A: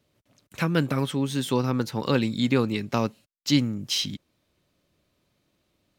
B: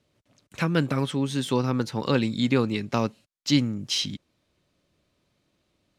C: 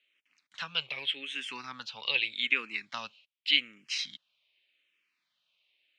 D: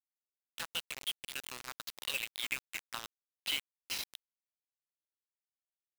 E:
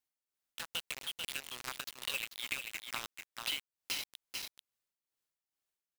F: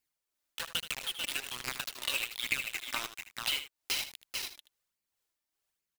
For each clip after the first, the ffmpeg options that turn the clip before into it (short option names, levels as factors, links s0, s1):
-af "lowpass=10000"
-filter_complex "[0:a]bandpass=f=2600:t=q:w=1.6:csg=0,equalizer=f=2800:t=o:w=1.2:g=10.5,asplit=2[s0][s1];[s1]afreqshift=-0.84[s2];[s0][s2]amix=inputs=2:normalize=1"
-af "acompressor=threshold=0.00891:ratio=2,acrusher=bits=5:mix=0:aa=0.000001"
-af "tremolo=f=2.3:d=0.64,aecho=1:1:440:0.398,acompressor=threshold=0.00794:ratio=3,volume=2.11"
-af "flanger=delay=0.4:depth=3:regen=35:speed=1.2:shape=sinusoidal,aecho=1:1:78:0.266,volume=2.66"